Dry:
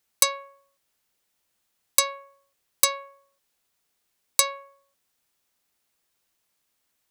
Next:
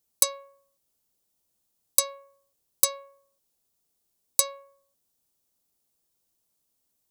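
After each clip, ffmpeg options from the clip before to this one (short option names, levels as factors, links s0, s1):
-af "equalizer=f=1900:w=0.6:g=-14,volume=1.12"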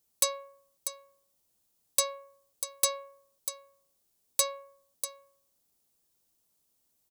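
-af "aecho=1:1:644:0.188,asoftclip=type=tanh:threshold=0.126,volume=1.19"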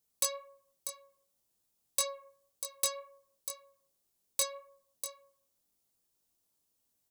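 -af "flanger=delay=20:depth=2.3:speed=1.9,volume=0.891"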